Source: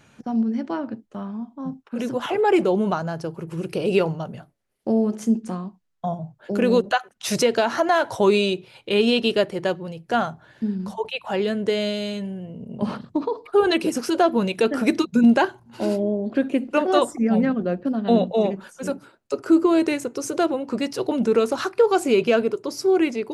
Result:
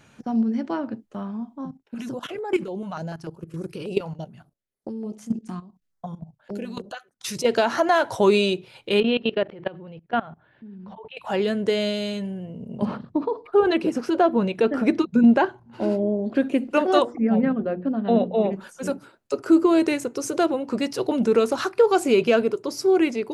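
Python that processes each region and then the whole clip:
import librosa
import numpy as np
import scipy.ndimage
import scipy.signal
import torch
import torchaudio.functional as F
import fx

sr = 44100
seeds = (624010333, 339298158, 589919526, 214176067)

y = fx.chain(x, sr, fx.level_steps(step_db=15),
    fx.filter_held_notch(hz=6.8, low_hz=380.0, high_hz=2800.0), at=(1.65, 7.46))
y = fx.chain(y, sr, fx.lowpass(hz=3200.0, slope=24),
    fx.level_steps(step_db=20), at=(9.0, 11.17))
y = fx.chain(y, sr, fx.lowpass(hz=3700.0, slope=6),
    fx.high_shelf(hz=2900.0, db=-7.0), at=(12.85, 16.19))
y = fx.chain(y, sr, fx.highpass(hz=41.0, slope=12),
    fx.air_absorb(metres=280.0),
    fx.hum_notches(base_hz=60, count=8), at=(17.02, 18.53))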